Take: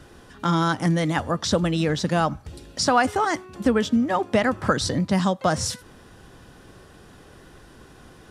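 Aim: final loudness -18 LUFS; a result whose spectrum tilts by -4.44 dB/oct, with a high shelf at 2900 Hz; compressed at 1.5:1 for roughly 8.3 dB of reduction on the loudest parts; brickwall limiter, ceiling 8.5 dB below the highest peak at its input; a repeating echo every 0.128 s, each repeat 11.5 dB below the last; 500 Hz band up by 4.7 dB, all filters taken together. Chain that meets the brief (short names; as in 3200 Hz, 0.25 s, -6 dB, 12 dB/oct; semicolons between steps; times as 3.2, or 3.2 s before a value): bell 500 Hz +5.5 dB; high shelf 2900 Hz +3.5 dB; compressor 1.5:1, threshold -36 dBFS; limiter -19 dBFS; feedback echo 0.128 s, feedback 27%, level -11.5 dB; gain +12 dB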